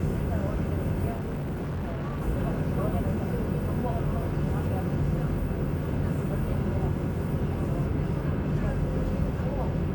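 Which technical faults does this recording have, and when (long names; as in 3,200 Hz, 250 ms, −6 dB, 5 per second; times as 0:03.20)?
0:01.12–0:02.22: clipping −28.5 dBFS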